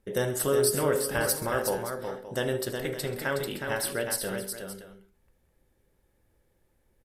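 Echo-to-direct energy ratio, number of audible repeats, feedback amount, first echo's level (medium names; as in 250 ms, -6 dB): -5.0 dB, 4, no regular repeats, -16.5 dB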